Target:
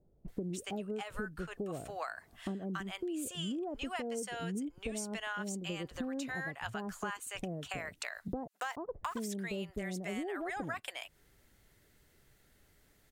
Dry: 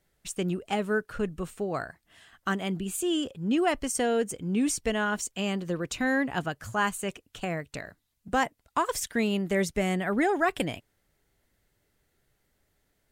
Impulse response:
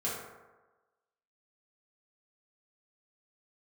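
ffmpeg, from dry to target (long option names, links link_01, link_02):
-filter_complex "[0:a]asettb=1/sr,asplit=3[link_01][link_02][link_03];[link_01]atrim=end=8.324[link_04];[link_02]atrim=start=8.32:end=8.92,asetpts=PTS-STARTPTS,afade=type=in:duration=0.004:curve=qsin,afade=type=out:start_time=0.596:duration=0.004:curve=qsin,aeval=exprs='val(0)*gte(abs(val(0)),0.00841)':channel_layout=same[link_05];[link_03]atrim=start=8.916[link_06];[link_04][link_05]acrossfade=duration=0.004:curve1=hsin:curve2=qsin[link_07];[link_07][link_06]acrossfade=duration=0.004:curve1=qsin:curve2=hsin,acrossover=split=690[link_08][link_09];[link_09]adelay=280[link_10];[link_08][link_10]amix=inputs=2:normalize=0,acompressor=threshold=-42dB:ratio=10,volume=6dB"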